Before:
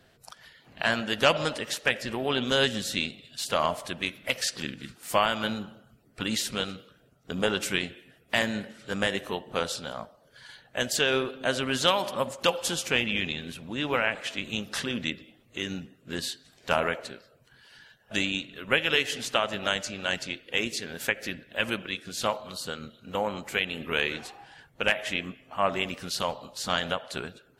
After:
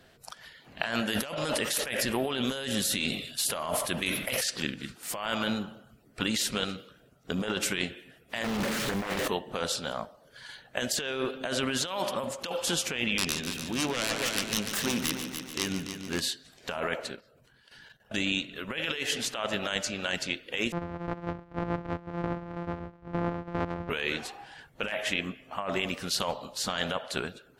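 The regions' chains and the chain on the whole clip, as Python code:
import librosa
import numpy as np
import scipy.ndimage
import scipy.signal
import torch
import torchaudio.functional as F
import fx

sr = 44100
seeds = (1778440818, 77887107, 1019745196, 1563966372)

y = fx.chain(x, sr, fx.peak_eq(hz=11000.0, db=13.0, octaves=0.46),
    fx.sustainer(db_per_s=68.0), at=(0.95, 4.44))
y = fx.chain(y, sr, fx.zero_step(step_db=-28.0),
    fx.doppler_dist(depth_ms=0.81), at=(8.44, 9.28))
y = fx.chain(y, sr, fx.self_delay(depth_ms=0.39),
    fx.echo_heads(ms=145, heads='first and second', feedback_pct=50, wet_db=-11.0), at=(13.18, 16.21))
y = fx.chain(y, sr, fx.level_steps(step_db=11),
    fx.low_shelf(hz=430.0, db=4.5), at=(17.14, 18.27))
y = fx.chain(y, sr, fx.sample_sort(block=256),
    fx.lowpass(hz=1300.0, slope=12), at=(20.72, 23.9))
y = fx.peak_eq(y, sr, hz=110.0, db=-3.0, octaves=0.87)
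y = fx.over_compress(y, sr, threshold_db=-30.0, ratio=-1.0)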